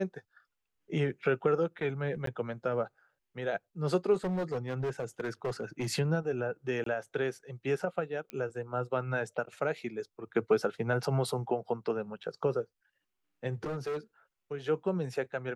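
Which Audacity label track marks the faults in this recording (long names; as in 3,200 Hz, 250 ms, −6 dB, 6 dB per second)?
2.260000	2.270000	drop-out 13 ms
4.240000	5.880000	clipping −29 dBFS
6.840000	6.860000	drop-out 23 ms
8.300000	8.300000	click −24 dBFS
12.230000	12.240000	drop-out 6.1 ms
13.640000	13.980000	clipping −31.5 dBFS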